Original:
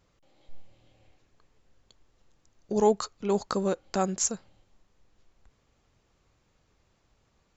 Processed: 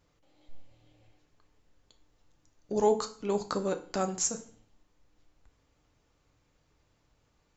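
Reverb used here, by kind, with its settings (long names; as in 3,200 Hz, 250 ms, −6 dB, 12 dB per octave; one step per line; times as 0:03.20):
feedback delay network reverb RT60 0.46 s, low-frequency decay 1.25×, high-frequency decay 0.95×, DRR 6 dB
level −3 dB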